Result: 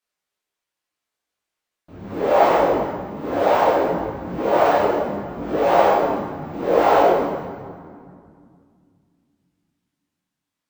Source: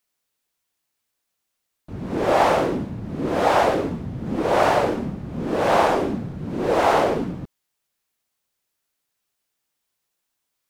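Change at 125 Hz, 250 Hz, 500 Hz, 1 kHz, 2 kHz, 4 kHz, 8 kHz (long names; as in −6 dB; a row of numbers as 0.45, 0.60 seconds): −4.5 dB, −0.5 dB, +3.5 dB, +2.5 dB, −0.5 dB, −2.5 dB, can't be measured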